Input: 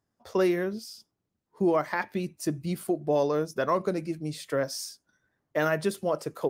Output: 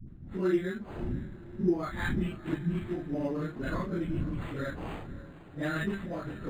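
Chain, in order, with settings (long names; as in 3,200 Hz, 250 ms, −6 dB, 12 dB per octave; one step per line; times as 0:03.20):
random phases in long frames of 100 ms
wind on the microphone 170 Hz −40 dBFS
mains-hum notches 50/100/150/200 Hz
treble cut that deepens with the level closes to 1,800 Hz, closed at −19.5 dBFS
flat-topped bell 670 Hz −12 dB
reversed playback
upward compression, threshold −36 dBFS
reversed playback
all-pass dispersion highs, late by 79 ms, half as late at 430 Hz
on a send: feedback delay with all-pass diffusion 531 ms, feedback 57%, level −15.5 dB
on the sum: linearly interpolated sample-rate reduction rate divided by 8×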